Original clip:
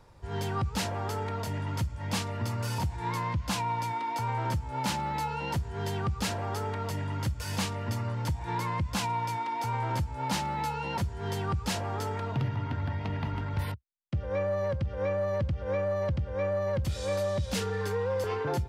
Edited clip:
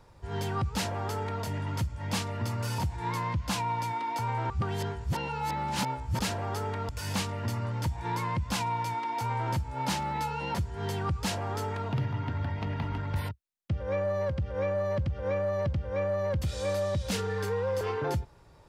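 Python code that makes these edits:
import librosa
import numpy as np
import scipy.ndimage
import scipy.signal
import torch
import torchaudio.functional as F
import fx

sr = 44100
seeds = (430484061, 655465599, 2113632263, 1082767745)

y = fx.edit(x, sr, fx.reverse_span(start_s=4.5, length_s=1.69),
    fx.cut(start_s=6.89, length_s=0.43), tone=tone)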